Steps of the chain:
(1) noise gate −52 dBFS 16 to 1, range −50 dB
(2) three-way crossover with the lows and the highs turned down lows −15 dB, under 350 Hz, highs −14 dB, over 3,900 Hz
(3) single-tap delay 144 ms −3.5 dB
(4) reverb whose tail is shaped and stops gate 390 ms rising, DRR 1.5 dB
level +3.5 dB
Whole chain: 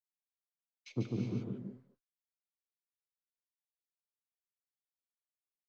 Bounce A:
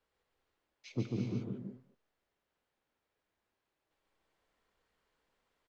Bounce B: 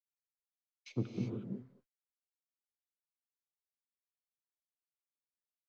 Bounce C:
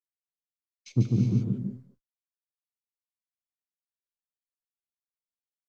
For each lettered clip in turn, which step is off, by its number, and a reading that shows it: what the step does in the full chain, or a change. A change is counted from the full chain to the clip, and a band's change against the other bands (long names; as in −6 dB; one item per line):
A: 1, 4 kHz band +1.5 dB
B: 3, echo-to-direct ratio 1.5 dB to −1.5 dB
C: 2, change in momentary loudness spread −12 LU